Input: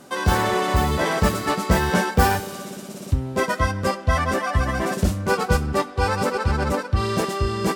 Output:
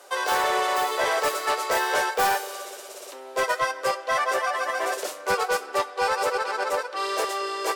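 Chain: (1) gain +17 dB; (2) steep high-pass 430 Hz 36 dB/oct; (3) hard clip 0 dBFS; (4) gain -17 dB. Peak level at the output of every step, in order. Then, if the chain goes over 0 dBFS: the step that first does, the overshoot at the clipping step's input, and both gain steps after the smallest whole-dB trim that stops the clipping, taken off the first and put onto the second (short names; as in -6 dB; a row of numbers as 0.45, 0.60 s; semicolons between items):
+14.0, +9.5, 0.0, -17.0 dBFS; step 1, 9.5 dB; step 1 +7 dB, step 4 -7 dB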